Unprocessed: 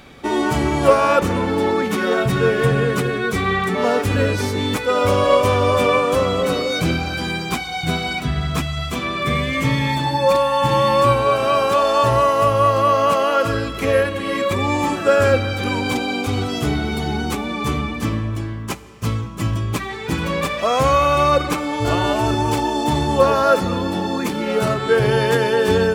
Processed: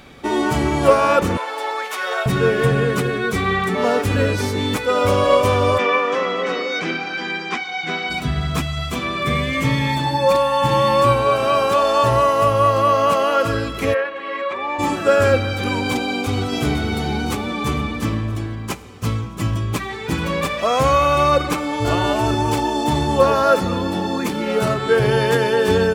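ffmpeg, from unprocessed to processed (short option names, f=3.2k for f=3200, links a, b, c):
-filter_complex "[0:a]asettb=1/sr,asplit=3[a][b][c];[a]atrim=end=1.374[d];[b]atrim=start=1.37:end=2.26,asetpts=PTS-STARTPTS,afade=t=in:d=0.004:c=qsin,afade=t=out:st=0.886:d=0.004:c=qsin,highpass=f=600:w=0.5412,highpass=f=600:w=1.3066[e];[c]atrim=start=2.256[f];[d][e]acrossfade=d=0.004:c1=hsin:c2=qsin[g];[g][f]acrossfade=d=0.004:c1=qsin:c2=hsin,asplit=3[h][i][j];[h]afade=t=out:st=5.77:d=0.02[k];[i]highpass=f=230:w=0.5412,highpass=f=230:w=1.3066,equalizer=f=270:t=q:w=4:g=-6,equalizer=f=590:t=q:w=4:g=-7,equalizer=f=1.9k:t=q:w=4:g=8,equalizer=f=4.2k:t=q:w=4:g=-7,lowpass=f=5.6k:w=0.5412,lowpass=f=5.6k:w=1.3066,afade=t=in:st=5.77:d=0.02,afade=t=out:st=8.09:d=0.02[l];[j]afade=t=in:st=8.09:d=0.02[m];[k][l][m]amix=inputs=3:normalize=0,asplit=3[n][o][p];[n]afade=t=out:st=13.93:d=0.02[q];[o]highpass=620,lowpass=2.3k,afade=t=in:st=13.93:d=0.02,afade=t=out:st=14.78:d=0.02[r];[p]afade=t=in:st=14.78:d=0.02[s];[q][r][s]amix=inputs=3:normalize=0,asplit=2[t][u];[u]afade=t=in:st=16.01:d=0.01,afade=t=out:st=16.51:d=0.01,aecho=0:1:510|1020|1530|2040|2550|3060|3570|4080|4590:0.398107|0.25877|0.1682|0.10933|0.0710646|0.046192|0.0300248|0.0195161|0.0126855[v];[t][v]amix=inputs=2:normalize=0"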